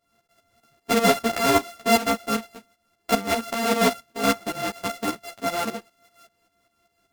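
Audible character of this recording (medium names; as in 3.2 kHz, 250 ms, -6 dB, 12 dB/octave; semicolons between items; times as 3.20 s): a buzz of ramps at a fixed pitch in blocks of 64 samples; tremolo saw up 5.1 Hz, depth 75%; a shimmering, thickened sound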